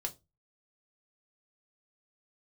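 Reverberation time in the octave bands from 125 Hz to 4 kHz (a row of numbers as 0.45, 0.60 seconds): 0.45, 0.30, 0.25, 0.20, 0.20, 0.20 seconds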